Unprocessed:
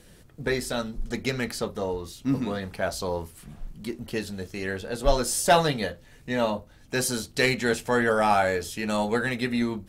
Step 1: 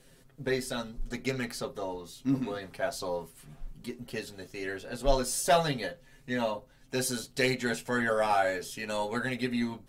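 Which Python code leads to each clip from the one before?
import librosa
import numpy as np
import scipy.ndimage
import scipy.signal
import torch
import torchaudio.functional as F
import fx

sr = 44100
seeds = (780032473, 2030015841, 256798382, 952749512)

y = fx.peak_eq(x, sr, hz=81.0, db=-11.0, octaves=0.76)
y = y + 0.82 * np.pad(y, (int(7.5 * sr / 1000.0), 0))[:len(y)]
y = y * librosa.db_to_amplitude(-7.0)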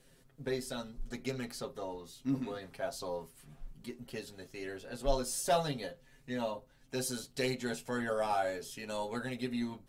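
y = fx.dynamic_eq(x, sr, hz=1900.0, q=1.5, threshold_db=-44.0, ratio=4.0, max_db=-6)
y = y * librosa.db_to_amplitude(-5.0)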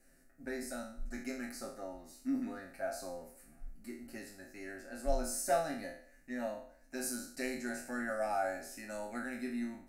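y = fx.spec_trails(x, sr, decay_s=0.55)
y = fx.fixed_phaser(y, sr, hz=670.0, stages=8)
y = y * librosa.db_to_amplitude(-1.5)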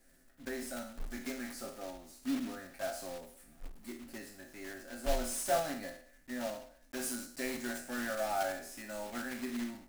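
y = fx.block_float(x, sr, bits=3)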